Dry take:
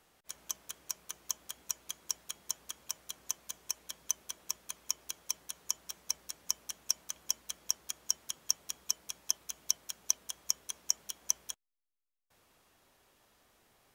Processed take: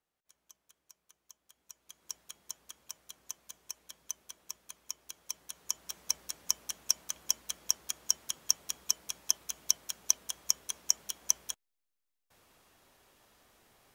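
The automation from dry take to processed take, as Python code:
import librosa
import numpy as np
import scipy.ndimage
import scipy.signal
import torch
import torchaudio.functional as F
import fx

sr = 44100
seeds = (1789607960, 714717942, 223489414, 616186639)

y = fx.gain(x, sr, db=fx.line((1.4, -20.0), (1.84, -13.0), (2.11, -6.0), (5.03, -6.0), (6.04, 3.0)))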